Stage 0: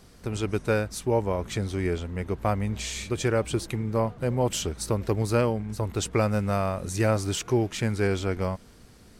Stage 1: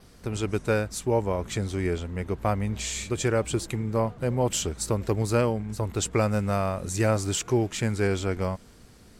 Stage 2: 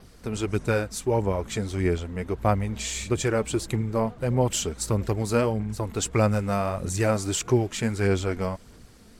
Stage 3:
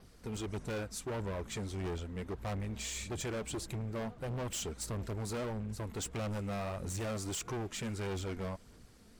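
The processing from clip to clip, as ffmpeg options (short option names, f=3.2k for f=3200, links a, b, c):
-af "adynamicequalizer=threshold=0.002:dfrequency=7400:dqfactor=4.9:tfrequency=7400:tqfactor=4.9:attack=5:release=100:ratio=0.375:range=3.5:mode=boostabove:tftype=bell"
-af "aphaser=in_gain=1:out_gain=1:delay=4.6:decay=0.36:speed=1.6:type=sinusoidal"
-af "volume=27dB,asoftclip=hard,volume=-27dB,volume=-8dB"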